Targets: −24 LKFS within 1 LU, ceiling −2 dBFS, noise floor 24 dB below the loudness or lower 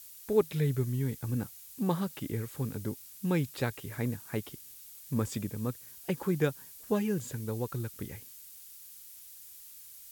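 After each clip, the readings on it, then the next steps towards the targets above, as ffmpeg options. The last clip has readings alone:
background noise floor −51 dBFS; target noise floor −58 dBFS; integrated loudness −33.5 LKFS; sample peak −14.0 dBFS; target loudness −24.0 LKFS
→ -af "afftdn=noise_reduction=7:noise_floor=-51"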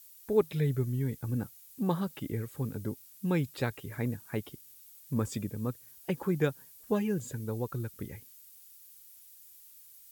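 background noise floor −55 dBFS; target noise floor −58 dBFS
→ -af "afftdn=noise_reduction=6:noise_floor=-55"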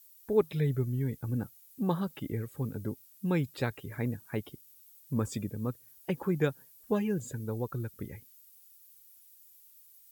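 background noise floor −59 dBFS; integrated loudness −34.0 LKFS; sample peak −14.0 dBFS; target loudness −24.0 LKFS
→ -af "volume=10dB"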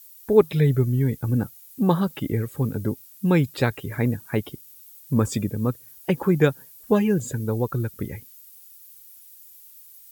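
integrated loudness −24.0 LKFS; sample peak −4.0 dBFS; background noise floor −49 dBFS

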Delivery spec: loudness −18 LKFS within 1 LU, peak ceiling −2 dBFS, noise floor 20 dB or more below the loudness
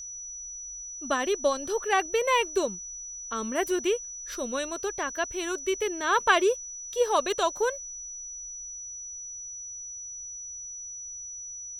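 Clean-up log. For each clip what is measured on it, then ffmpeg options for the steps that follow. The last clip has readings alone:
interfering tone 5,900 Hz; level of the tone −37 dBFS; integrated loudness −29.5 LKFS; sample peak −7.0 dBFS; target loudness −18.0 LKFS
→ -af "bandreject=frequency=5900:width=30"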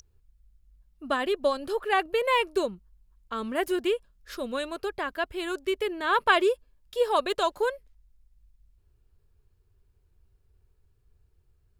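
interfering tone none found; integrated loudness −28.0 LKFS; sample peak −7.5 dBFS; target loudness −18.0 LKFS
→ -af "volume=10dB,alimiter=limit=-2dB:level=0:latency=1"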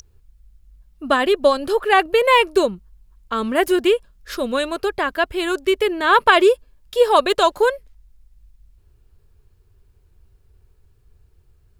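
integrated loudness −18.0 LKFS; sample peak −2.0 dBFS; background noise floor −57 dBFS

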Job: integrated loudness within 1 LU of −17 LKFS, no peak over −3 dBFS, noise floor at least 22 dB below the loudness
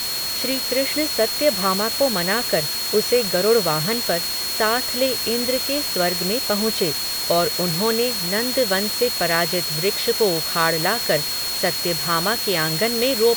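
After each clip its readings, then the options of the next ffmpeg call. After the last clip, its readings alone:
interfering tone 4,300 Hz; level of the tone −25 dBFS; background noise floor −25 dBFS; target noise floor −42 dBFS; integrated loudness −19.5 LKFS; sample peak −4.5 dBFS; target loudness −17.0 LKFS
→ -af "bandreject=frequency=4300:width=30"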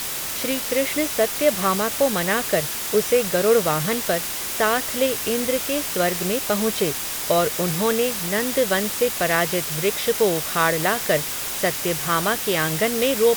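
interfering tone none found; background noise floor −28 dBFS; target noise floor −43 dBFS
→ -af "afftdn=noise_reduction=15:noise_floor=-28"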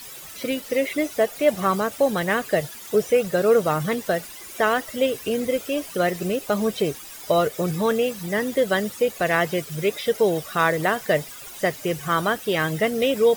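background noise floor −40 dBFS; target noise floor −45 dBFS
→ -af "afftdn=noise_reduction=6:noise_floor=-40"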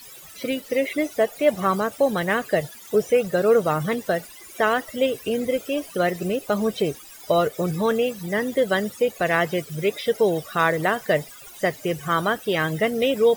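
background noise floor −44 dBFS; target noise floor −45 dBFS
→ -af "afftdn=noise_reduction=6:noise_floor=-44"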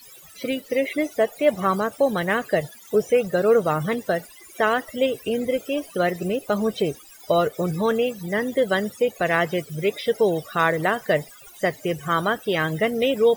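background noise floor −47 dBFS; integrated loudness −23.0 LKFS; sample peak −5.5 dBFS; target loudness −17.0 LKFS
→ -af "volume=6dB,alimiter=limit=-3dB:level=0:latency=1"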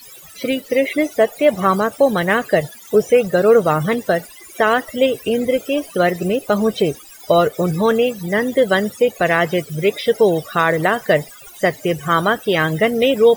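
integrated loudness −17.5 LKFS; sample peak −3.0 dBFS; background noise floor −41 dBFS

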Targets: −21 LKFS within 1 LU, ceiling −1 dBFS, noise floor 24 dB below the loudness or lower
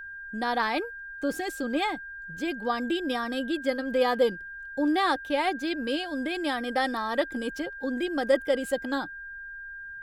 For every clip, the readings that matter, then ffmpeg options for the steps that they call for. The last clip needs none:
interfering tone 1,600 Hz; level of the tone −38 dBFS; integrated loudness −28.5 LKFS; sample peak −10.5 dBFS; target loudness −21.0 LKFS
→ -af "bandreject=frequency=1600:width=30"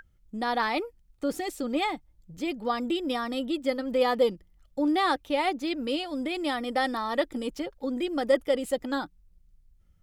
interfering tone none found; integrated loudness −29.0 LKFS; sample peak −10.5 dBFS; target loudness −21.0 LKFS
→ -af "volume=8dB"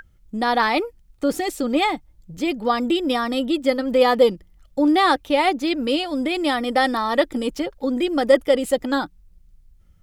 integrated loudness −21.0 LKFS; sample peak −2.5 dBFS; background noise floor −55 dBFS

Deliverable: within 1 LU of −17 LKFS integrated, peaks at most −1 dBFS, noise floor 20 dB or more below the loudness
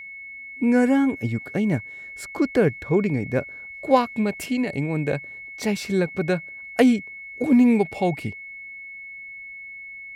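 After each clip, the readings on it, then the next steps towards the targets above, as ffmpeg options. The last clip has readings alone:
interfering tone 2,200 Hz; level of the tone −36 dBFS; integrated loudness −22.5 LKFS; sample peak −4.0 dBFS; target loudness −17.0 LKFS
→ -af "bandreject=frequency=2200:width=30"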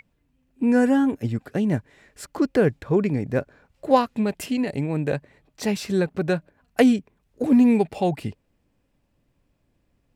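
interfering tone none found; integrated loudness −23.0 LKFS; sample peak −4.5 dBFS; target loudness −17.0 LKFS
→ -af "volume=6dB,alimiter=limit=-1dB:level=0:latency=1"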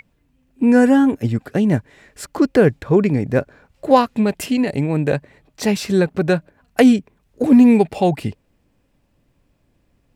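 integrated loudness −17.0 LKFS; sample peak −1.0 dBFS; background noise floor −64 dBFS

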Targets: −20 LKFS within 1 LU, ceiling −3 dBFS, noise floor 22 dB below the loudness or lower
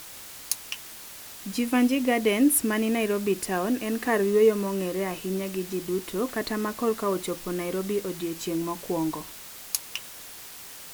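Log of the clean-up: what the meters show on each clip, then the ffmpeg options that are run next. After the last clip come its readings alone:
background noise floor −43 dBFS; target noise floor −49 dBFS; integrated loudness −27.0 LKFS; sample peak −5.0 dBFS; target loudness −20.0 LKFS
→ -af "afftdn=noise_reduction=6:noise_floor=-43"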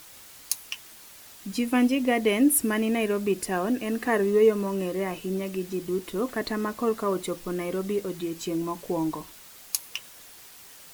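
background noise floor −48 dBFS; target noise floor −49 dBFS
→ -af "afftdn=noise_reduction=6:noise_floor=-48"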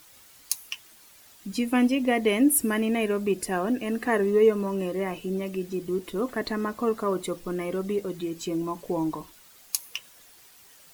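background noise floor −54 dBFS; integrated loudness −27.0 LKFS; sample peak −5.0 dBFS; target loudness −20.0 LKFS
→ -af "volume=7dB,alimiter=limit=-3dB:level=0:latency=1"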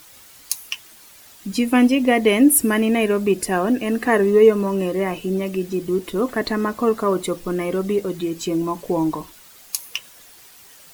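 integrated loudness −20.0 LKFS; sample peak −3.0 dBFS; background noise floor −47 dBFS

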